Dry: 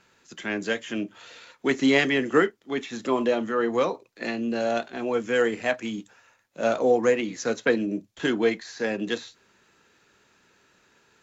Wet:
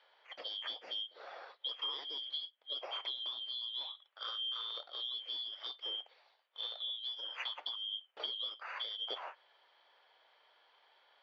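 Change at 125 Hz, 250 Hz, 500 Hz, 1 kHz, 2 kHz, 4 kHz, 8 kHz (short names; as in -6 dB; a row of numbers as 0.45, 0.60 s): under -40 dB, under -40 dB, -30.5 dB, -18.0 dB, -22.5 dB, +1.5 dB, n/a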